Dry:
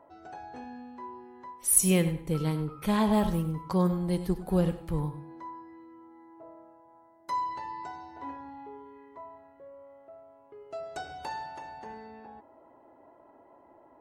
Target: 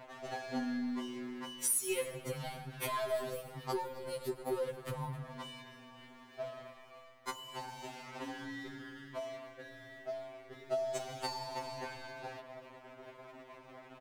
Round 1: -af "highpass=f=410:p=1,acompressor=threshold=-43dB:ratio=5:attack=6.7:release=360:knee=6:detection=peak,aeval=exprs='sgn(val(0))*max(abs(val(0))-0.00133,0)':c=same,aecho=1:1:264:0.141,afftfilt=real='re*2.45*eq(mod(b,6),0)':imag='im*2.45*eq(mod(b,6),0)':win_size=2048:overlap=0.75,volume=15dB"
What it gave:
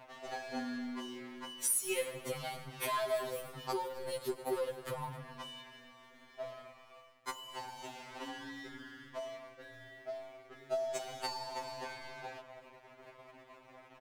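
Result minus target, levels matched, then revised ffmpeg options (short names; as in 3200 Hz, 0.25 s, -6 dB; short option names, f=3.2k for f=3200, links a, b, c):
125 Hz band -5.0 dB
-af "highpass=f=110:p=1,acompressor=threshold=-43dB:ratio=5:attack=6.7:release=360:knee=6:detection=peak,aeval=exprs='sgn(val(0))*max(abs(val(0))-0.00133,0)':c=same,aecho=1:1:264:0.141,afftfilt=real='re*2.45*eq(mod(b,6),0)':imag='im*2.45*eq(mod(b,6),0)':win_size=2048:overlap=0.75,volume=15dB"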